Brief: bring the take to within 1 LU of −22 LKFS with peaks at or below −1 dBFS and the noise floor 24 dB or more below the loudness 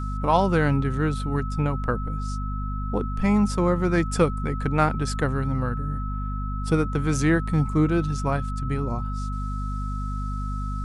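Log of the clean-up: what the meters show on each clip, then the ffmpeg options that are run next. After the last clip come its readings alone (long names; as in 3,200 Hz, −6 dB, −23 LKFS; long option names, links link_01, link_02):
mains hum 50 Hz; hum harmonics up to 250 Hz; level of the hum −26 dBFS; interfering tone 1,300 Hz; level of the tone −35 dBFS; integrated loudness −25.0 LKFS; sample peak −6.0 dBFS; target loudness −22.0 LKFS
→ -af "bandreject=frequency=50:width_type=h:width=6,bandreject=frequency=100:width_type=h:width=6,bandreject=frequency=150:width_type=h:width=6,bandreject=frequency=200:width_type=h:width=6,bandreject=frequency=250:width_type=h:width=6"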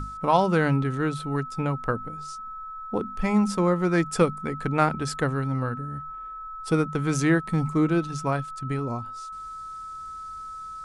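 mains hum none found; interfering tone 1,300 Hz; level of the tone −35 dBFS
→ -af "bandreject=frequency=1300:width=30"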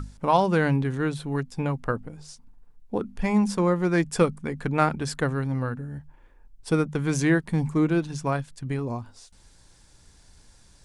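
interfering tone none found; integrated loudness −25.5 LKFS; sample peak −7.5 dBFS; target loudness −22.0 LKFS
→ -af "volume=3.5dB"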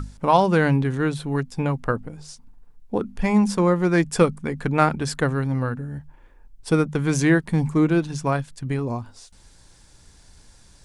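integrated loudness −22.0 LKFS; sample peak −4.0 dBFS; background noise floor −52 dBFS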